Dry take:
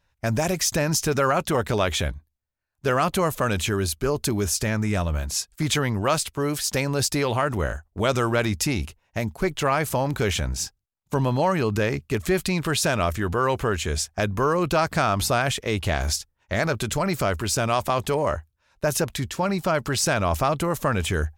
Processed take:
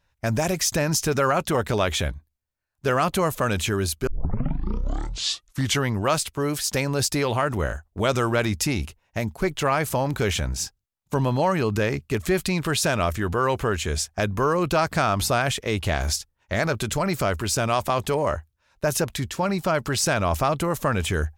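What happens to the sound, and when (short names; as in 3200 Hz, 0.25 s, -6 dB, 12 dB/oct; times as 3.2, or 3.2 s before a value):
4.07 tape start 1.79 s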